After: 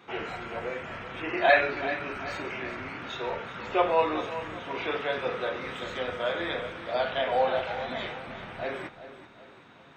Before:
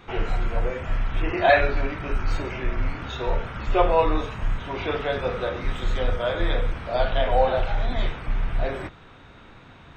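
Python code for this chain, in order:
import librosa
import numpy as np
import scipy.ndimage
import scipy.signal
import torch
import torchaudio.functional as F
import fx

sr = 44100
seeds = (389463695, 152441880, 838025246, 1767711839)

p1 = x + fx.echo_feedback(x, sr, ms=384, feedback_pct=42, wet_db=-12, dry=0)
p2 = fx.dynamic_eq(p1, sr, hz=2200.0, q=0.91, threshold_db=-40.0, ratio=4.0, max_db=4)
p3 = scipy.signal.sosfilt(scipy.signal.butter(2, 190.0, 'highpass', fs=sr, output='sos'), p2)
y = F.gain(torch.from_numpy(p3), -4.5).numpy()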